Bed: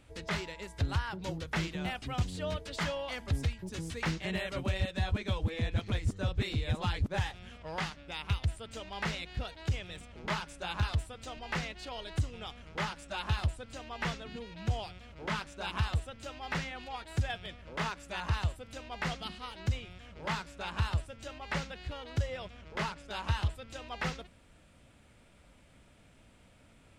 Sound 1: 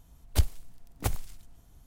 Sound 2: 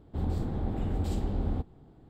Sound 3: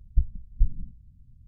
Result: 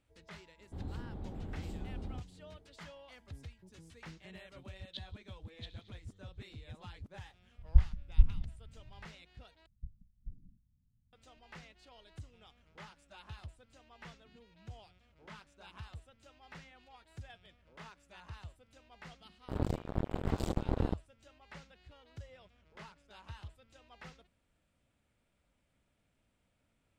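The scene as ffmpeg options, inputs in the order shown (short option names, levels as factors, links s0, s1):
-filter_complex "[2:a]asplit=2[s0][s1];[3:a]asplit=2[s2][s3];[0:a]volume=0.141[s4];[1:a]asuperpass=centerf=3600:order=4:qfactor=4.5[s5];[s2]equalizer=f=66:w=1.5:g=4[s6];[s3]lowshelf=f=120:g=-12[s7];[s1]acrusher=bits=3:mix=0:aa=0.5[s8];[s4]asplit=2[s9][s10];[s9]atrim=end=9.664[s11];[s7]atrim=end=1.47,asetpts=PTS-STARTPTS,volume=0.211[s12];[s10]atrim=start=11.126[s13];[s0]atrim=end=2.09,asetpts=PTS-STARTPTS,volume=0.251,afade=t=in:d=0.004:c=hsin,afade=t=out:st=2.086:d=0.004:c=hsin,adelay=580[s14];[s5]atrim=end=1.86,asetpts=PTS-STARTPTS,volume=0.944,afade=t=in:d=0.004:c=hsin,afade=t=out:st=1.856:d=0.004:c=hsin,adelay=4580[s15];[s6]atrim=end=1.47,asetpts=PTS-STARTPTS,volume=0.708,afade=t=in:d=0.004:c=hsin,afade=t=out:st=1.466:d=0.004:c=hsin,adelay=7580[s16];[s8]atrim=end=2.09,asetpts=PTS-STARTPTS,volume=0.891,afade=t=in:d=0.004:c=hsin,afade=t=out:st=2.086:d=0.004:c=hsin,adelay=19330[s17];[s11][s12]acrossfade=d=0.004:c1=hsin:c2=hsin[s18];[s18][s13]acrossfade=d=0.004:c1=hsin:c2=hsin[s19];[s19][s14][s15][s16][s17]amix=inputs=5:normalize=0"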